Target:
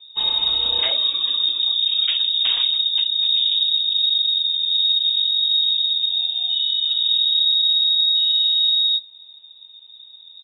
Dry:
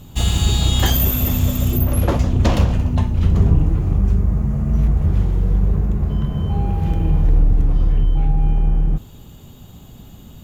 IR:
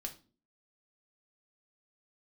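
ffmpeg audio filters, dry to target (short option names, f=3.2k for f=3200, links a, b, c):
-af "aresample=11025,aeval=exprs='0.282*(abs(mod(val(0)/0.282+3,4)-2)-1)':c=same,aresample=44100,afftdn=nr=14:nf=-34,lowpass=f=3.2k:t=q:w=0.5098,lowpass=f=3.2k:t=q:w=0.6013,lowpass=f=3.2k:t=q:w=0.9,lowpass=f=3.2k:t=q:w=2.563,afreqshift=-3800,volume=-3dB"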